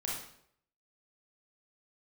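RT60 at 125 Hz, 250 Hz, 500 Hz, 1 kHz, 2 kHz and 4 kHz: 0.70, 0.65, 0.70, 0.65, 0.60, 0.55 seconds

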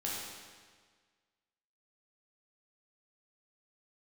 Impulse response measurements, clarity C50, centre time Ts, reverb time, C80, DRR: −1.0 dB, 100 ms, 1.6 s, 1.0 dB, −6.0 dB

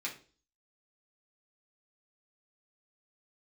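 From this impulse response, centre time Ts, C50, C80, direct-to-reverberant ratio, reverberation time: 17 ms, 10.5 dB, 16.0 dB, −4.5 dB, 0.40 s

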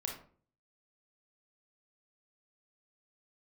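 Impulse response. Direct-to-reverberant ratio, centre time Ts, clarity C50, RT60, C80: 0.0 dB, 27 ms, 5.5 dB, 0.45 s, 11.0 dB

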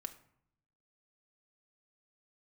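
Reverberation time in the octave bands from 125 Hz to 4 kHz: 1.2, 0.90, 0.65, 0.65, 0.55, 0.40 seconds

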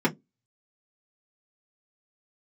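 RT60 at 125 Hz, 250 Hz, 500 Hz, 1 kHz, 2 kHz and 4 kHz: 0.20, 0.25, 0.20, 0.10, 0.10, 0.10 seconds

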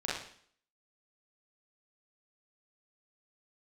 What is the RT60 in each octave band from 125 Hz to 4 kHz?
0.55, 0.60, 0.55, 0.55, 0.55, 0.60 seconds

